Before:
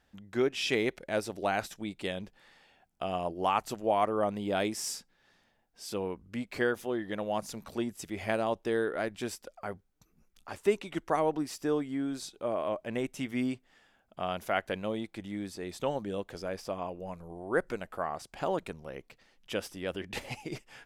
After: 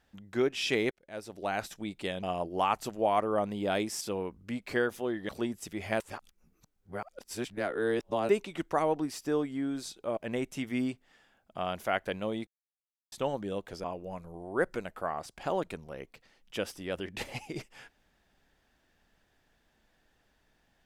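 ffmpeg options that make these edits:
ffmpeg -i in.wav -filter_complex "[0:a]asplit=11[link_01][link_02][link_03][link_04][link_05][link_06][link_07][link_08][link_09][link_10][link_11];[link_01]atrim=end=0.91,asetpts=PTS-STARTPTS,afade=type=out:start_time=0.906:duration=0.004:curve=hsin[link_12];[link_02]atrim=start=0.91:end=2.232,asetpts=PTS-STARTPTS,afade=type=in:duration=0.82[link_13];[link_03]atrim=start=3.078:end=4.862[link_14];[link_04]atrim=start=5.858:end=7.142[link_15];[link_05]atrim=start=7.658:end=8.372[link_16];[link_06]atrim=start=8.368:end=10.662,asetpts=PTS-STARTPTS,areverse[link_17];[link_07]atrim=start=10.658:end=12.542[link_18];[link_08]atrim=start=12.788:end=15.09,asetpts=PTS-STARTPTS,afade=type=out:start_time=2.298:duration=0.004:curve=hsin[link_19];[link_09]atrim=start=15.09:end=15.74,asetpts=PTS-STARTPTS,volume=0[link_20];[link_10]atrim=start=15.74:end=16.462,asetpts=PTS-STARTPTS,afade=type=in:duration=0.004:curve=hsin[link_21];[link_11]atrim=start=16.798[link_22];[link_12][link_13]concat=n=2:v=0:a=1[link_23];[link_23][link_14]acrossfade=duration=0.004:curve1=hsin:curve2=hsin[link_24];[link_24][link_15]acrossfade=duration=0.004:curve1=hsin:curve2=hsin[link_25];[link_25][link_16]acrossfade=duration=0.004:curve1=hsin:curve2=hsin[link_26];[link_26][link_17]acrossfade=duration=0.004:curve1=hsin:curve2=hsin[link_27];[link_27][link_18]acrossfade=duration=0.004:curve1=hsin:curve2=hsin[link_28];[link_19][link_20][link_21]concat=n=3:v=0:a=1[link_29];[link_28][link_29]acrossfade=duration=0.004:curve1=hsin:curve2=hsin[link_30];[link_30][link_22]acrossfade=duration=0.004:curve1=hsin:curve2=hsin" out.wav

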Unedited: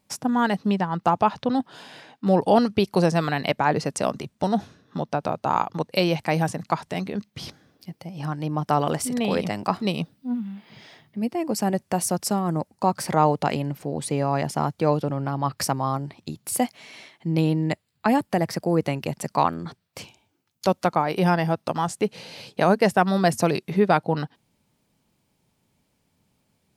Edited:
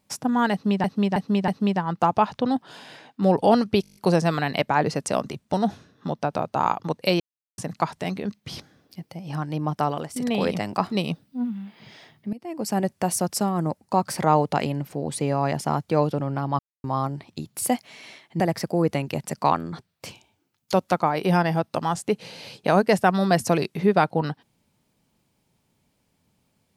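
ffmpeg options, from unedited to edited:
ffmpeg -i in.wav -filter_complex "[0:a]asplit=18[link_01][link_02][link_03][link_04][link_05][link_06][link_07][link_08][link_09][link_10][link_11][link_12][link_13][link_14][link_15][link_16][link_17][link_18];[link_01]atrim=end=0.842[link_19];[link_02]atrim=start=0.518:end=0.842[link_20];[link_03]atrim=start=0.518:end=0.842[link_21];[link_04]atrim=start=0.518:end=2.882[link_22];[link_05]atrim=start=2.858:end=2.882[link_23];[link_06]atrim=start=2.858:end=2.882[link_24];[link_07]atrim=start=2.858:end=2.882[link_25];[link_08]atrim=start=2.858:end=2.882[link_26];[link_09]atrim=start=2.858:end=2.882[link_27];[link_10]atrim=start=2.858:end=2.882[link_28];[link_11]atrim=start=2.858:end=6.1,asetpts=PTS-STARTPTS,afade=type=out:start_time=3.238:duration=0.004:curve=hsin[link_29];[link_12]atrim=start=6.1:end=6.48,asetpts=PTS-STARTPTS,volume=0[link_30];[link_13]atrim=start=6.48:end=9.06,asetpts=PTS-STARTPTS,afade=type=in:duration=0.004:curve=hsin,afade=type=out:start_time=2.11:duration=0.47:silence=0.199526[link_31];[link_14]atrim=start=9.06:end=11.23,asetpts=PTS-STARTPTS,afade=type=in:duration=0.004:curve=hsin:silence=0.199526,afade=type=out:start_time=2.166:duration=0.004:curve=hsin:silence=0.112202[link_32];[link_15]atrim=start=11.23:end=15.49,asetpts=PTS-STARTPTS,afade=type=in:duration=0.46:silence=0.112202,afade=type=out:start_time=4.256:duration=0.004:curve=hsin[link_33];[link_16]atrim=start=15.49:end=15.74,asetpts=PTS-STARTPTS,volume=0[link_34];[link_17]atrim=start=15.74:end=17.302,asetpts=PTS-STARTPTS,afade=type=in:duration=0.004:curve=hsin[link_35];[link_18]atrim=start=18.328[link_36];[link_19][link_20]acrossfade=duration=0.004:curve1=hsin:curve2=hsin[link_37];[link_37][link_21]acrossfade=duration=0.004:curve1=hsin:curve2=hsin[link_38];[link_38][link_22]acrossfade=duration=0.004:curve1=hsin:curve2=hsin[link_39];[link_39][link_23]acrossfade=duration=0.004:curve1=hsin:curve2=hsin[link_40];[link_40][link_24]acrossfade=duration=0.004:curve1=hsin:curve2=hsin[link_41];[link_41][link_25]acrossfade=duration=0.004:curve1=hsin:curve2=hsin[link_42];[link_42][link_26]acrossfade=duration=0.004:curve1=hsin:curve2=hsin[link_43];[link_43][link_27]acrossfade=duration=0.004:curve1=hsin:curve2=hsin[link_44];[link_44][link_28]acrossfade=duration=0.004:curve1=hsin:curve2=hsin[link_45];[link_29][link_30][link_31][link_32][link_33][link_34][link_35]concat=n=7:v=0:a=1[link_46];[link_45][link_46]acrossfade=duration=0.004:curve1=hsin:curve2=hsin[link_47];[link_47][link_36]acrossfade=duration=0.004:curve1=hsin:curve2=hsin" out.wav

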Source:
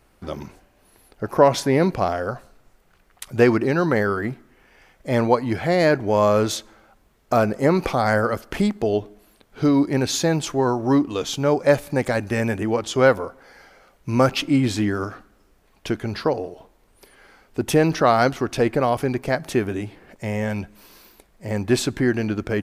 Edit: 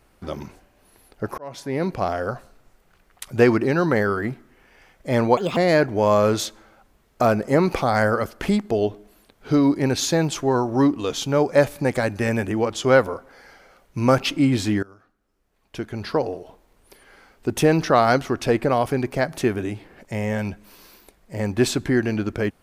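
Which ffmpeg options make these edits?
ffmpeg -i in.wav -filter_complex "[0:a]asplit=5[link_01][link_02][link_03][link_04][link_05];[link_01]atrim=end=1.38,asetpts=PTS-STARTPTS,afade=type=out:start_time=1.376:duration=0.004:curve=hsin[link_06];[link_02]atrim=start=1.38:end=5.374,asetpts=PTS-STARTPTS,afade=type=in:duration=0.84[link_07];[link_03]atrim=start=5.37:end=5.68,asetpts=PTS-STARTPTS,asetrate=69237,aresample=44100[link_08];[link_04]atrim=start=5.676:end=14.94,asetpts=PTS-STARTPTS,afade=type=out:start_time=9.26:duration=0.004:curve=hsin:silence=0.0749894[link_09];[link_05]atrim=start=14.94,asetpts=PTS-STARTPTS,afade=type=in:duration=1.4:curve=qua:silence=0.0749894[link_10];[link_06][link_07]concat=n=2:v=0:a=1[link_11];[link_11][link_08]acrossfade=duration=0.004:curve1=hsin:curve2=hsin[link_12];[link_09][link_10]concat=n=2:v=0:a=1[link_13];[link_12][link_13]acrossfade=duration=0.004:curve1=hsin:curve2=hsin" out.wav

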